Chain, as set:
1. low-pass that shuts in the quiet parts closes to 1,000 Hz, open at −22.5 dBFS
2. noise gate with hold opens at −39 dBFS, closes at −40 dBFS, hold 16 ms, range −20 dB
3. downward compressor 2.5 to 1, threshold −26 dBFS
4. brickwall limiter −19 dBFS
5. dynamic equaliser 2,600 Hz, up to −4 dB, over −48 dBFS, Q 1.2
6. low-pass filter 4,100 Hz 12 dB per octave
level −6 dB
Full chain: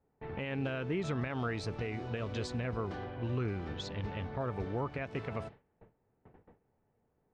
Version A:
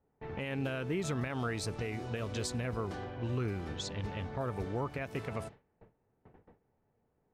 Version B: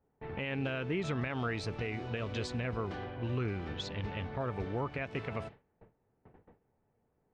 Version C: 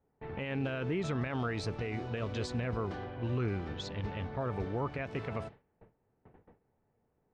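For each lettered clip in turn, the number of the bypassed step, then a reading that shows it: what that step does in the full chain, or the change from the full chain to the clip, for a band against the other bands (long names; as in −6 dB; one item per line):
6, 8 kHz band +10.5 dB
5, 4 kHz band +2.5 dB
3, change in integrated loudness +1.0 LU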